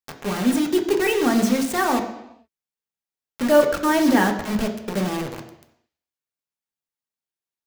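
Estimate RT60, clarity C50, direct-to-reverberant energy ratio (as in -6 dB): 0.85 s, 9.0 dB, 2.5 dB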